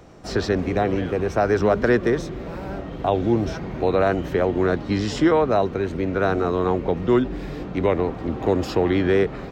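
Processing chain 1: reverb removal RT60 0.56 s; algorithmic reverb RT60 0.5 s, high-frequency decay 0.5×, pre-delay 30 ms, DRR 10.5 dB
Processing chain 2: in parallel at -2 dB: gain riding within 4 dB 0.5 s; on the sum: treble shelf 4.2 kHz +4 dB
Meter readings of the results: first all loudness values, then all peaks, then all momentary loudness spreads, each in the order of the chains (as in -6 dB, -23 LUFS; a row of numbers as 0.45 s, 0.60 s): -22.5 LUFS, -17.0 LUFS; -8.0 dBFS, -2.0 dBFS; 8 LU, 7 LU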